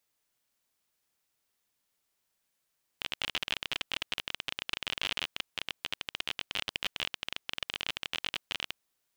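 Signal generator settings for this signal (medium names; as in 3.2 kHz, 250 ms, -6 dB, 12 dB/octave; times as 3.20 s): random clicks 31 per s -15 dBFS 5.73 s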